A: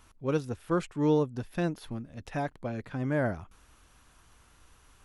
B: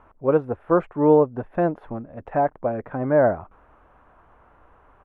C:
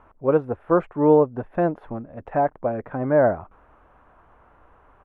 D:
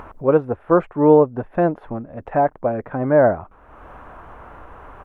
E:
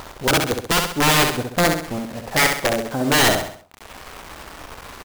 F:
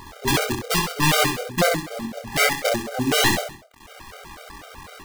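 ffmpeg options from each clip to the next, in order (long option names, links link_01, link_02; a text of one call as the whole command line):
ffmpeg -i in.wav -af "firequalizer=gain_entry='entry(120,0);entry(610,13);entry(4600,-29)':delay=0.05:min_phase=1,volume=2dB" out.wav
ffmpeg -i in.wav -af anull out.wav
ffmpeg -i in.wav -af "acompressor=mode=upward:threshold=-32dB:ratio=2.5,volume=3.5dB" out.wav
ffmpeg -i in.wav -af "aeval=exprs='(mod(3.76*val(0)+1,2)-1)/3.76':channel_layout=same,acrusher=bits=5:mix=0:aa=0.000001,aecho=1:1:66|132|198|264|330:0.562|0.236|0.0992|0.0417|0.0175" out.wav
ffmpeg -i in.wav -af "acrusher=bits=2:mode=log:mix=0:aa=0.000001,flanger=delay=22.5:depth=3.8:speed=2.4,afftfilt=real='re*gt(sin(2*PI*4*pts/sr)*(1-2*mod(floor(b*sr/1024/400),2)),0)':imag='im*gt(sin(2*PI*4*pts/sr)*(1-2*mod(floor(b*sr/1024/400),2)),0)':win_size=1024:overlap=0.75,volume=3dB" out.wav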